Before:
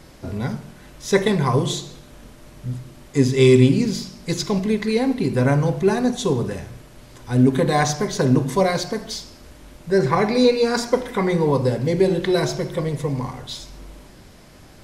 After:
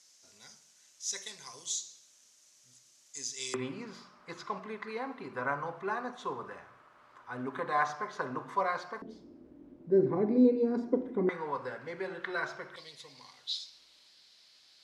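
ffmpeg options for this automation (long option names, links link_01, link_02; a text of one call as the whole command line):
ffmpeg -i in.wav -af "asetnsamples=nb_out_samples=441:pad=0,asendcmd='3.54 bandpass f 1200;9.02 bandpass f 300;11.29 bandpass f 1400;12.76 bandpass f 4200',bandpass=frequency=6400:width_type=q:width=3.5:csg=0" out.wav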